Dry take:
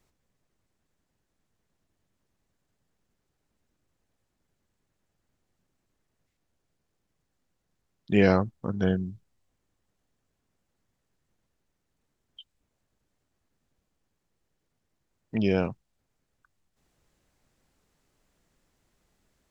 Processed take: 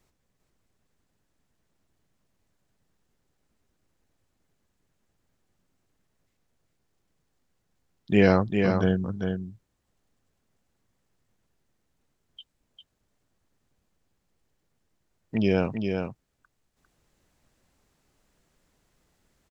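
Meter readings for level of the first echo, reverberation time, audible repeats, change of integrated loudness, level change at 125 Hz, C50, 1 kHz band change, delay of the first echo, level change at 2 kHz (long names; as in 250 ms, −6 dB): −5.5 dB, no reverb audible, 1, +1.0 dB, +2.5 dB, no reverb audible, +2.5 dB, 400 ms, +2.5 dB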